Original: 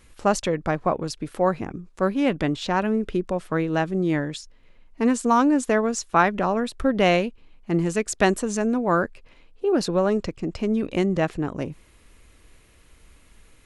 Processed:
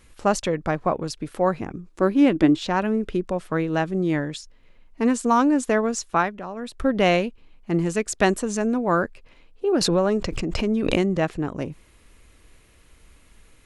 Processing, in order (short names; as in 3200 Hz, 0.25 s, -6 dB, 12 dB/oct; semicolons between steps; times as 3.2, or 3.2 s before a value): 1.89–2.63 bell 320 Hz +14.5 dB 0.3 oct; 6.09–6.83 dip -11 dB, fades 0.27 s; 9.81–11.01 backwards sustainer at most 31 dB/s